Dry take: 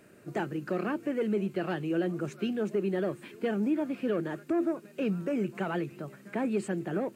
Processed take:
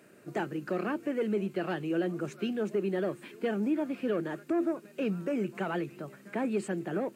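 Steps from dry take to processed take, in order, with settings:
high-pass filter 110 Hz
low-shelf EQ 150 Hz −4 dB

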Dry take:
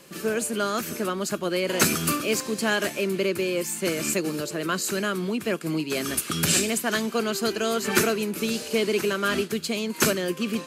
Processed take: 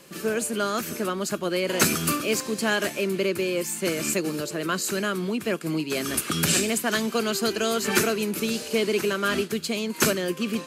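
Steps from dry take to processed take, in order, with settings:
0:06.14–0:08.40: multiband upward and downward compressor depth 40%

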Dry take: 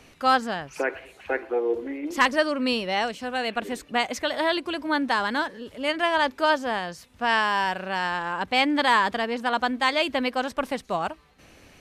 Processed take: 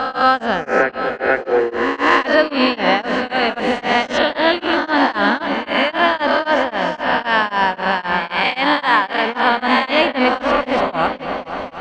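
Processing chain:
peak hold with a rise ahead of every peak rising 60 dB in 1.35 s
0:08.19–0:09.26: low-shelf EQ 350 Hz −11.5 dB
in parallel at +2 dB: brickwall limiter −14 dBFS, peak gain reduction 10 dB
on the sum: high-frequency loss of the air 160 metres
on a send: echo whose low-pass opens from repeat to repeat 243 ms, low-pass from 400 Hz, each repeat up 2 octaves, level −6 dB
on the sum: downsampling to 22,050 Hz
tremolo along a rectified sine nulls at 3.8 Hz
level +2.5 dB

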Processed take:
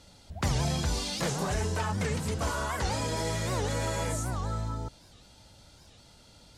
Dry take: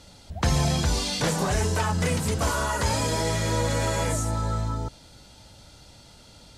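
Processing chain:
0:01.54–0:03.17: high-shelf EQ 9,500 Hz −6.5 dB
wow of a warped record 78 rpm, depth 250 cents
level −5.5 dB

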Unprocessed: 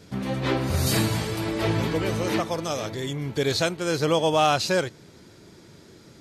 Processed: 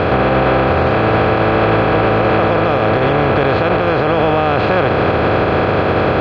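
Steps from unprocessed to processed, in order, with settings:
compressor on every frequency bin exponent 0.2
brickwall limiter −11 dBFS, peak gain reduction 9 dB
low-pass filter 2,600 Hz 24 dB per octave
level +7.5 dB

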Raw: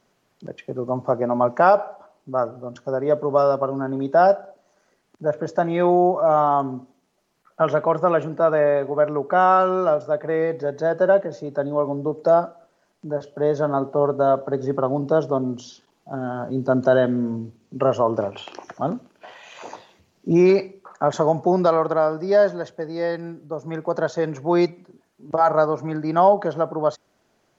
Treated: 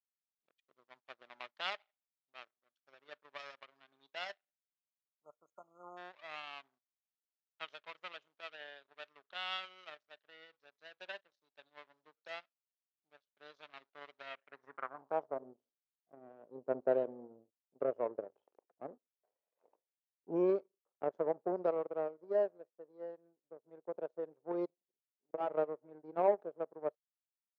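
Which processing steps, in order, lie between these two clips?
power curve on the samples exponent 2
band-pass filter sweep 3,700 Hz → 480 Hz, 0:14.22–0:15.49
time-frequency box erased 0:05.09–0:05.97, 1,400–6,300 Hz
level −3.5 dB

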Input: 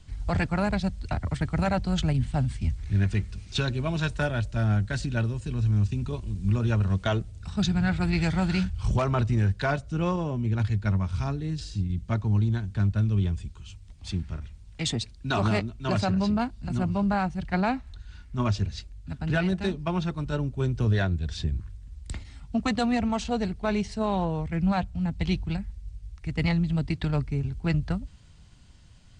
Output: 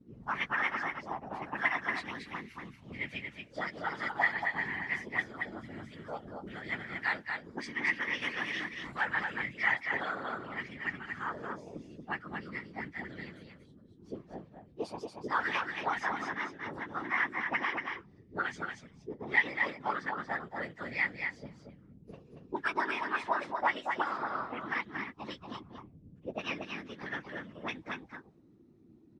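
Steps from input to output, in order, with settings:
phase-vocoder pitch shift without resampling +4.5 semitones
random phases in short frames
envelope filter 310–2,000 Hz, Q 3.5, up, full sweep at −23.5 dBFS
single-tap delay 232 ms −5 dB
level +8.5 dB

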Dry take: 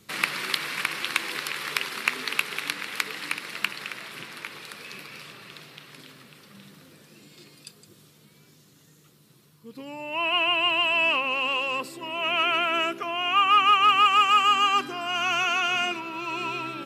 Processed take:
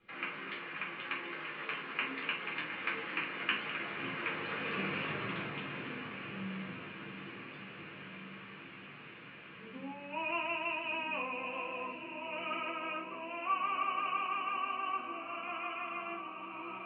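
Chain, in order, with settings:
source passing by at 0:05.15, 15 m/s, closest 9.1 metres
Butterworth low-pass 2,800 Hz 36 dB per octave
feedback delay with all-pass diffusion 1,335 ms, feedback 66%, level −10 dB
rectangular room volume 220 cubic metres, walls furnished, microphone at 3.9 metres
one half of a high-frequency compander encoder only

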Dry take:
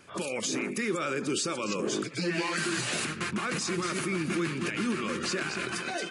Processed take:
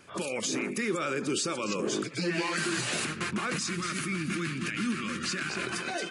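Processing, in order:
0:03.56–0:05.50: flat-topped bell 600 Hz −10 dB

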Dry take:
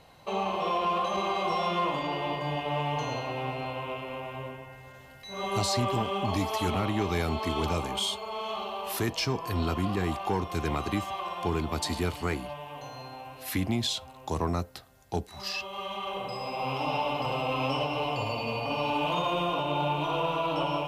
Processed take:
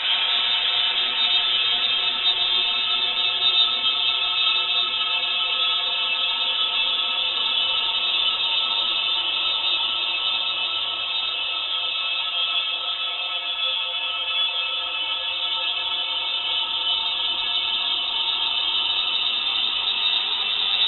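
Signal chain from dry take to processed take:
decimation without filtering 12×
extreme stretch with random phases 35×, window 0.25 s, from 0:05.74
multi-voice chorus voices 4, 0.3 Hz, delay 26 ms, depth 4.3 ms
voice inversion scrambler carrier 3,800 Hz
level +8.5 dB

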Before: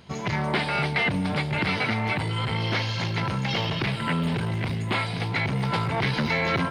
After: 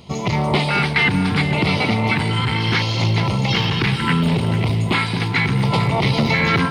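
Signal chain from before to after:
auto-filter notch square 0.71 Hz 610–1,600 Hz
delay that swaps between a low-pass and a high-pass 222 ms, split 870 Hz, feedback 56%, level −7.5 dB
level +8 dB

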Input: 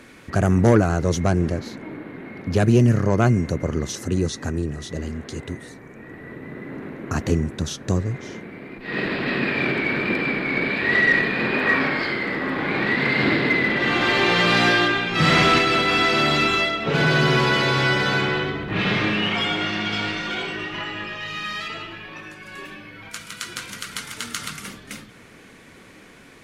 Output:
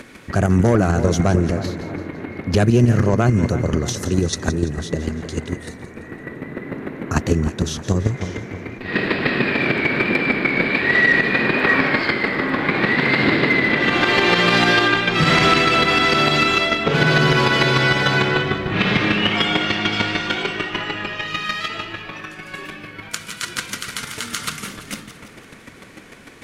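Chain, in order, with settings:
square-wave tremolo 6.7 Hz, depth 60%, duty 10%
echo with a time of its own for lows and highs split 1,700 Hz, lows 313 ms, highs 169 ms, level −13 dB
boost into a limiter +15 dB
level −4.5 dB

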